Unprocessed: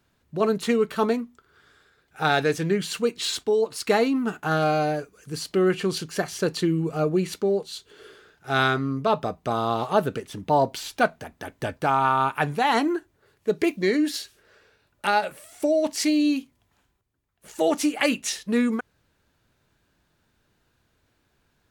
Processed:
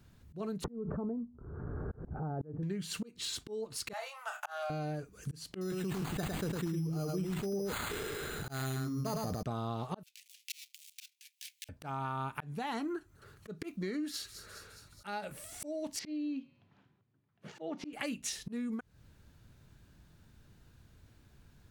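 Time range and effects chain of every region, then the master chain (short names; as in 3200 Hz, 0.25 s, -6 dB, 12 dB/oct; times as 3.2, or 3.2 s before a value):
0.64–2.63 Bessel low-pass 660 Hz, order 6 + backwards sustainer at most 37 dB/s
3.93–4.7 steep high-pass 550 Hz 96 dB/oct + notch 4200 Hz, Q 11 + doubler 29 ms -8 dB
5.61–9.43 careless resampling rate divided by 8×, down none, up hold + echo 0.106 s -3.5 dB + sustainer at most 28 dB/s
10.03–11.69 switching dead time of 0.13 ms + steep high-pass 2300 Hz 48 dB/oct
12.8–15.07 bell 1300 Hz +10.5 dB 0.37 oct + thin delay 0.208 s, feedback 63%, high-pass 4900 Hz, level -17 dB
15.99–17.93 HPF 130 Hz 24 dB/oct + air absorption 250 m + de-hum 182.4 Hz, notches 28
whole clip: tone controls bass +12 dB, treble +3 dB; auto swell 0.594 s; compressor 5:1, threshold -36 dBFS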